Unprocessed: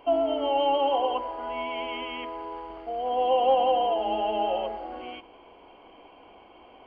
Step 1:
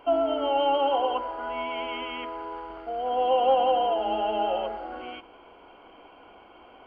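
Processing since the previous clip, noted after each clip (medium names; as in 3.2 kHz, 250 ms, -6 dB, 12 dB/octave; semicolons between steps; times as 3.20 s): peaking EQ 1.4 kHz +12 dB 0.24 oct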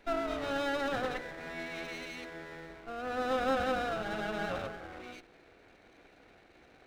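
comb filter that takes the minimum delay 0.45 ms; trim -6.5 dB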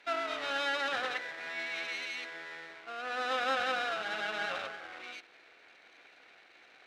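band-pass filter 2.9 kHz, Q 0.66; trim +6.5 dB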